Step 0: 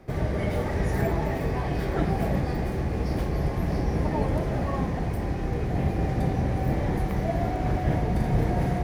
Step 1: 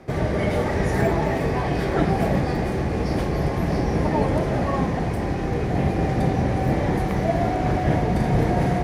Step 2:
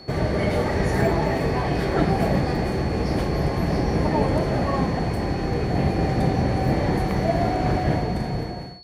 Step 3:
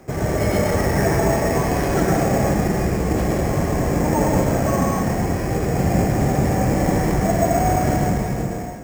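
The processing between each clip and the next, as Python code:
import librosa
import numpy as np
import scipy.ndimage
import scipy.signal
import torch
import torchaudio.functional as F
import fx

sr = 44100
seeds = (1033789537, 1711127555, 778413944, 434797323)

y1 = scipy.signal.sosfilt(scipy.signal.butter(2, 11000.0, 'lowpass', fs=sr, output='sos'), x)
y1 = fx.low_shelf(y1, sr, hz=80.0, db=-10.0)
y1 = y1 * librosa.db_to_amplitude(6.5)
y2 = fx.fade_out_tail(y1, sr, length_s=1.1)
y2 = y2 + 10.0 ** (-44.0 / 20.0) * np.sin(2.0 * np.pi * 4400.0 * np.arange(len(y2)) / sr)
y3 = fx.rev_plate(y2, sr, seeds[0], rt60_s=0.77, hf_ratio=0.95, predelay_ms=95, drr_db=-1.0)
y3 = np.repeat(scipy.signal.resample_poly(y3, 1, 6), 6)[:len(y3)]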